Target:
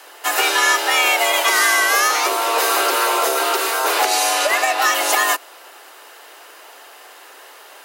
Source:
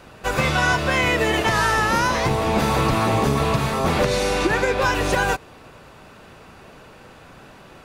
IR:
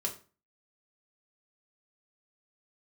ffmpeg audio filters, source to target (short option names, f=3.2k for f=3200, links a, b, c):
-af "aemphasis=mode=production:type=bsi,afreqshift=250,volume=3dB"